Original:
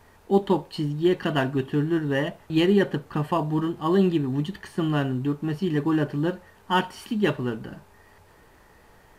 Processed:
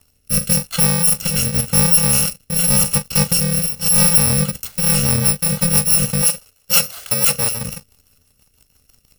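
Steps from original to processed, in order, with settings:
samples in bit-reversed order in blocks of 128 samples
leveller curve on the samples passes 3
0:06.22–0:07.57: low shelf with overshoot 380 Hz −6.5 dB, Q 1.5
rotating-speaker cabinet horn 0.9 Hz, later 6 Hz, at 0:04.18
level +3.5 dB

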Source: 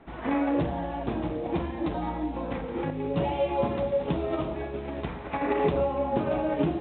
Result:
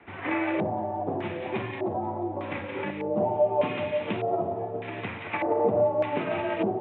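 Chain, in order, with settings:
high-shelf EQ 2,800 Hz +9.5 dB
delay with a high-pass on its return 177 ms, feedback 68%, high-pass 1,900 Hz, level −4 dB
frequency shifter +41 Hz
auto-filter low-pass square 0.83 Hz 710–2,300 Hz
level −3 dB

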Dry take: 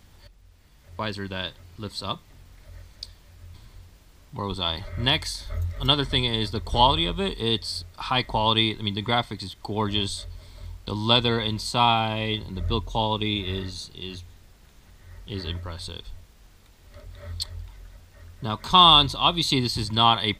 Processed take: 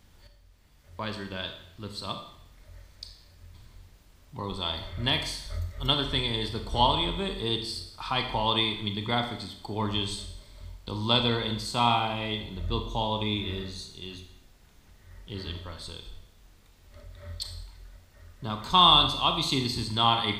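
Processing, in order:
four-comb reverb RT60 0.73 s, combs from 26 ms, DRR 5.5 dB
level −5 dB

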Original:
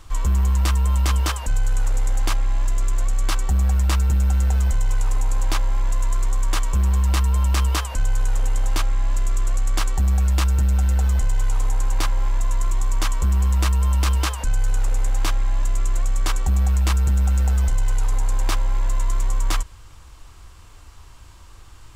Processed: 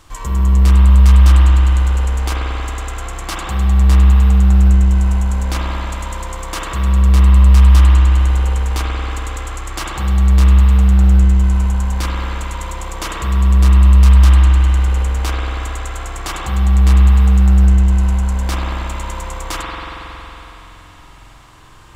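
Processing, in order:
low-shelf EQ 61 Hz −10.5 dB
spring reverb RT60 3.9 s, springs 46 ms, chirp 55 ms, DRR −5 dB
in parallel at −4 dB: soft clipping −16 dBFS, distortion −7 dB
on the sum: level −2.5 dB

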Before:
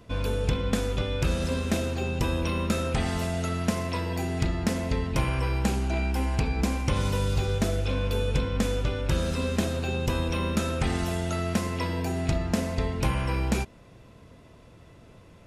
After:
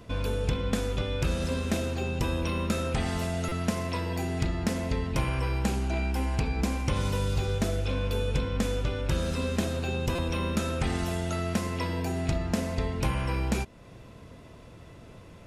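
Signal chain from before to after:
in parallel at +1 dB: downward compressor, threshold −39 dBFS, peak gain reduction 17.5 dB
on the sum: buffer that repeats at 0:03.48/0:10.15, samples 256, times 5
level −3.5 dB

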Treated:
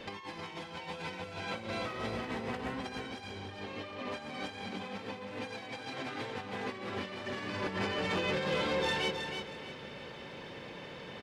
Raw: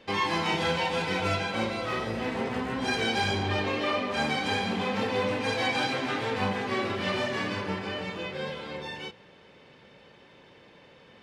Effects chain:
compressor whose output falls as the input rises −36 dBFS, ratio −0.5
soft clipping −26.5 dBFS, distortion −16 dB
on a send: repeating echo 317 ms, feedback 29%, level −6.5 dB

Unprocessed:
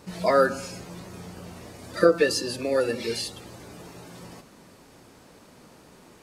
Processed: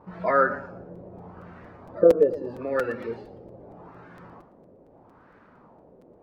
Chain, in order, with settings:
auto-filter low-pass sine 0.79 Hz 530–1,600 Hz
regular buffer underruns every 0.23 s, samples 256, repeat, from 0:00.95
feedback echo with a swinging delay time 115 ms, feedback 30%, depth 142 cents, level −15 dB
level −4 dB

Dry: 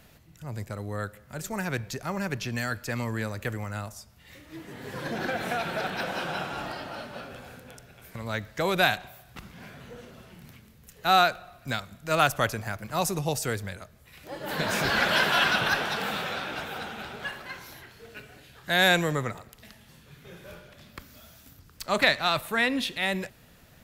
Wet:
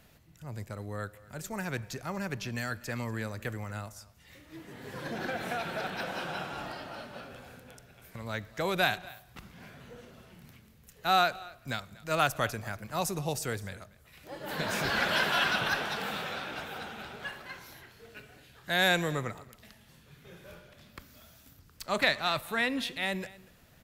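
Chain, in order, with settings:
single-tap delay 240 ms −21 dB
level −4.5 dB

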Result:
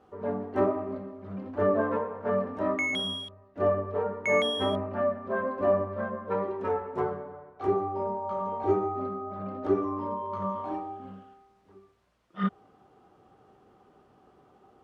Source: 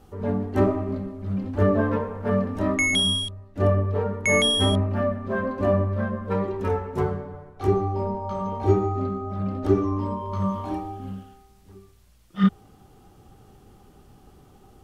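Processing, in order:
resonant band-pass 810 Hz, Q 0.77
notch filter 830 Hz, Q 12

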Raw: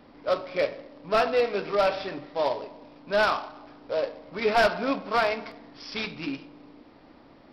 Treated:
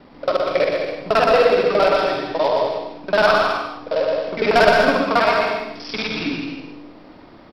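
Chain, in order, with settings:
reversed piece by piece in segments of 46 ms
bouncing-ball delay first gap 120 ms, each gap 0.7×, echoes 5
reverb whose tail is shaped and stops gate 180 ms rising, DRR 7.5 dB
level +6.5 dB

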